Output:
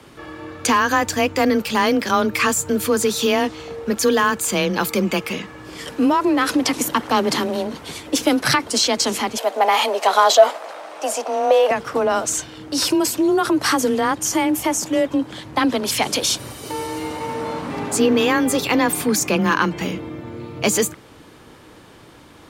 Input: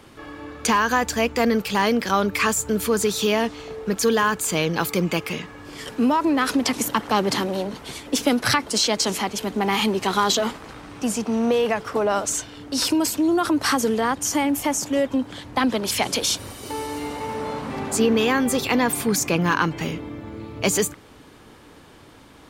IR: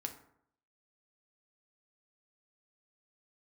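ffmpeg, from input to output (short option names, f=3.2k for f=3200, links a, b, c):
-filter_complex "[0:a]asettb=1/sr,asplit=3[a][b][c];[a]atrim=end=9.374[d];[b]atrim=start=9.37:end=11.71,asetpts=PTS-STARTPTS,afade=t=in:d=0.004:c=qsin,afade=t=out:st=2.336:d=0.004:c=qsin,highpass=f=610:t=q:w=4.9[e];[c]atrim=start=11.706[f];[d][e]acrossfade=d=0.004:c1=hsin:c2=qsin[g];[g][f]acrossfade=d=0.004:c1=qsin:c2=hsin,afreqshift=20,volume=2.5dB"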